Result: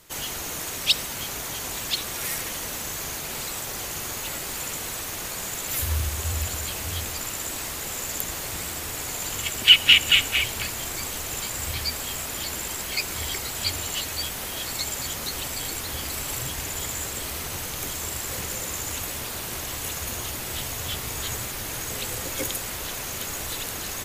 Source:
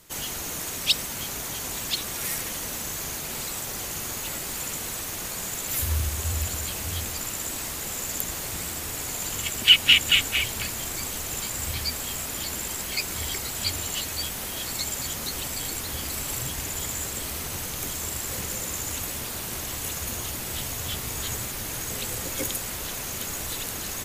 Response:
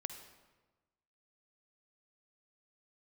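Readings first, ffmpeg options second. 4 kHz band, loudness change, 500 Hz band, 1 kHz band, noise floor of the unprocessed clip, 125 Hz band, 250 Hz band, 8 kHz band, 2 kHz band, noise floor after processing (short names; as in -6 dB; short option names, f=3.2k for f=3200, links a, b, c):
+1.5 dB, +1.0 dB, +1.5 dB, +2.0 dB, -33 dBFS, 0.0 dB, -0.5 dB, 0.0 dB, +2.0 dB, -33 dBFS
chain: -filter_complex "[0:a]asplit=2[a][b];[b]highpass=f=190:w=0.5412,highpass=f=190:w=1.3066[c];[1:a]atrim=start_sample=2205,lowpass=6k[d];[c][d]afir=irnorm=-1:irlink=0,volume=-9.5dB[e];[a][e]amix=inputs=2:normalize=0"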